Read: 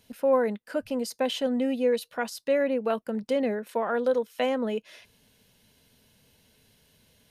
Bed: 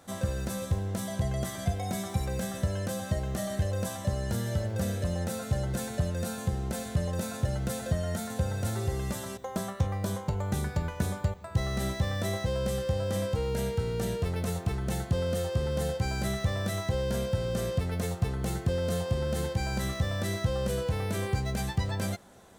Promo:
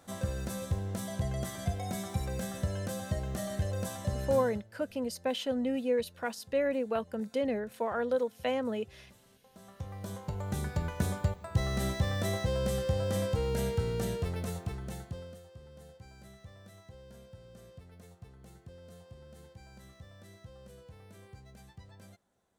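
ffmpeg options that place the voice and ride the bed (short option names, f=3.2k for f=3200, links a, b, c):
-filter_complex "[0:a]adelay=4050,volume=-5dB[a];[1:a]volume=21.5dB,afade=t=out:st=4.23:d=0.41:silence=0.0749894,afade=t=in:st=9.53:d=1.5:silence=0.0562341,afade=t=out:st=13.84:d=1.57:silence=0.0841395[b];[a][b]amix=inputs=2:normalize=0"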